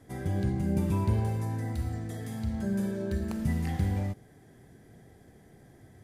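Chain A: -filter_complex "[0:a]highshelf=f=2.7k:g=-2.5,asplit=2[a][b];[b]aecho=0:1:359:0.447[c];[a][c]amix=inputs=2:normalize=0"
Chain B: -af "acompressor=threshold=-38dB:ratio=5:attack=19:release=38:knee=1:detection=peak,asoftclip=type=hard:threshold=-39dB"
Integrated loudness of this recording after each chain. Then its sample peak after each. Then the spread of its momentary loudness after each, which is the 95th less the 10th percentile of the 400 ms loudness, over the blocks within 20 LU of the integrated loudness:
-31.0, -42.5 LUFS; -16.0, -39.0 dBFS; 10, 14 LU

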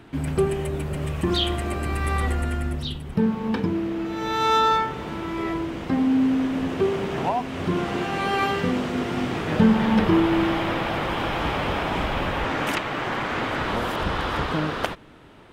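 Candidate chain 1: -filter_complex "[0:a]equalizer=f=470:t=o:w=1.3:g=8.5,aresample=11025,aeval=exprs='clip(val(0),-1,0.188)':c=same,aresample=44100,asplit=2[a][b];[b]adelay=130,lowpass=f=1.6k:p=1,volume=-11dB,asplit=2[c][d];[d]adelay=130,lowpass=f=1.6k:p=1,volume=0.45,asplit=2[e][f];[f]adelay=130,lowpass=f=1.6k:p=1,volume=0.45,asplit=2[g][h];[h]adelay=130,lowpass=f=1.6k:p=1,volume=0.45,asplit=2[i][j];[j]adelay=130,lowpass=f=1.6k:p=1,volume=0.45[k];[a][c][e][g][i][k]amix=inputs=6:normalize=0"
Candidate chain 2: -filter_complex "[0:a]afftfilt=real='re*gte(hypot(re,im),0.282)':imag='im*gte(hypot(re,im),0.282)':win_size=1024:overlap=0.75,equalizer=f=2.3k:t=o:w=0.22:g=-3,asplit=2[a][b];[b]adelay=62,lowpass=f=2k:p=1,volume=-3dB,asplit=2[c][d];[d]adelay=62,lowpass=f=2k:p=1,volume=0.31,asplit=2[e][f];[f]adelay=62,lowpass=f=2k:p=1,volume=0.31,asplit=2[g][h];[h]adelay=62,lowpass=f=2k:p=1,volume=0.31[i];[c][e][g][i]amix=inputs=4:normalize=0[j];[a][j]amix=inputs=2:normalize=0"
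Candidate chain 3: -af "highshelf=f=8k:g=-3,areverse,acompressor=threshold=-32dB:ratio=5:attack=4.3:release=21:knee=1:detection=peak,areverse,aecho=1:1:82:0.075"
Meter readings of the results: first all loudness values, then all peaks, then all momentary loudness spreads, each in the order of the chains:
-20.5, -25.5, -32.5 LUFS; -3.0, -7.0, -19.5 dBFS; 8, 18, 2 LU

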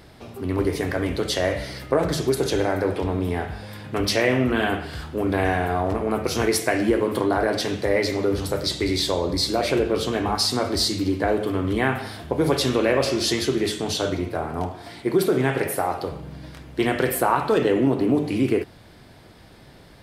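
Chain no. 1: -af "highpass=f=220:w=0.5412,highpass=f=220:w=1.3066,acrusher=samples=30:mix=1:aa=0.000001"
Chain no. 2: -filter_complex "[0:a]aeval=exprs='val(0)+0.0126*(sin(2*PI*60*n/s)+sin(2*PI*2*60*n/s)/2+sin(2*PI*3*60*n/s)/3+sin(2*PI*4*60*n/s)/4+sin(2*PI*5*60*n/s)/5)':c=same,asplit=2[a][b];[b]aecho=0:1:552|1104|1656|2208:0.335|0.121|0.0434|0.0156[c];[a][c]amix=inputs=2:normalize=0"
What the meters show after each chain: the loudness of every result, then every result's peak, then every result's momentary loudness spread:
-23.5, -22.5 LUFS; -5.5, -5.0 dBFS; 9, 9 LU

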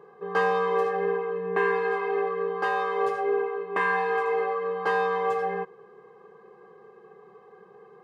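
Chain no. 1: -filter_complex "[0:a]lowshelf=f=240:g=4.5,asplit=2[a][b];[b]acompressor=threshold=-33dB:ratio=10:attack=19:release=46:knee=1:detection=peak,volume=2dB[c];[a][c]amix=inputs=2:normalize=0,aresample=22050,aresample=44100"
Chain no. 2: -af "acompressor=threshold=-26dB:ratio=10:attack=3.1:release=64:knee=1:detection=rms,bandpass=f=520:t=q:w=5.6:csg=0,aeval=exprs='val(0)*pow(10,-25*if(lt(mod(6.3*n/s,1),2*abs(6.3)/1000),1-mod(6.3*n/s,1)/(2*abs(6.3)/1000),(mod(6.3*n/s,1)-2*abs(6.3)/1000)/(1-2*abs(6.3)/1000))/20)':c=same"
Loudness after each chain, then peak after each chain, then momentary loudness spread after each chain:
-22.0, -46.0 LUFS; -9.0, -30.5 dBFS; 3, 20 LU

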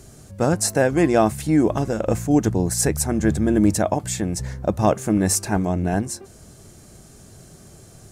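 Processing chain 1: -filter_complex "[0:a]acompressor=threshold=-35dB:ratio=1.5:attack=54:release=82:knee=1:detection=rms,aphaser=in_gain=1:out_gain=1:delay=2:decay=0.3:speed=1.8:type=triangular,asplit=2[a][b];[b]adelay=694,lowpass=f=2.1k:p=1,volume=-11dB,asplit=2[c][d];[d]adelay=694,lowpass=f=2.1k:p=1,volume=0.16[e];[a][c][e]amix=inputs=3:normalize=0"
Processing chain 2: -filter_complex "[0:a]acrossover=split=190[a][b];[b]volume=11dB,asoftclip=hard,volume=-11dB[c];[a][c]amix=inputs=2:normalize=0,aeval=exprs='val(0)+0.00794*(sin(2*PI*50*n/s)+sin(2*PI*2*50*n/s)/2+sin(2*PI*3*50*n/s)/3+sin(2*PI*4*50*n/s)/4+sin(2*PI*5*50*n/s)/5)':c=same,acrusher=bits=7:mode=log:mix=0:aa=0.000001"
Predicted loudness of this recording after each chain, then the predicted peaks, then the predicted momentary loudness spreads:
-25.5, -21.0 LUFS; -10.0, -6.0 dBFS; 20, 7 LU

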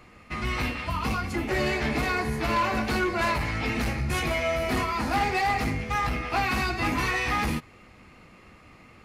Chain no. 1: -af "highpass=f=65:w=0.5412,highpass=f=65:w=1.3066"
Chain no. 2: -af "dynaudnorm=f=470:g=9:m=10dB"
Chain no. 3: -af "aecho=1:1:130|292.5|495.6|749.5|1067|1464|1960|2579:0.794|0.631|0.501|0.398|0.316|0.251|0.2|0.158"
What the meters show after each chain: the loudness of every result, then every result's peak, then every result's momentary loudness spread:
-27.0, -18.0, -23.0 LUFS; -14.0, -6.0, -10.0 dBFS; 4, 12, 8 LU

